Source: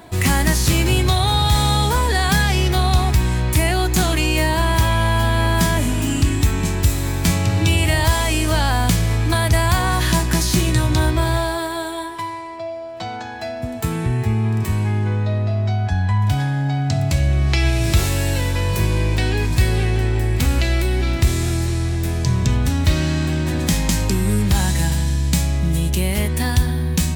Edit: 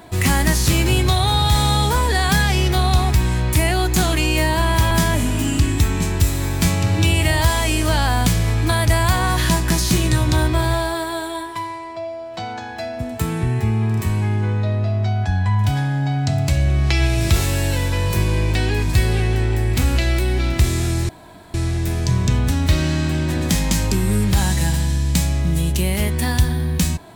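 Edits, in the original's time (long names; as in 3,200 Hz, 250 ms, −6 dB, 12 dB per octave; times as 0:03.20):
0:04.91–0:05.54: remove
0:21.72: splice in room tone 0.45 s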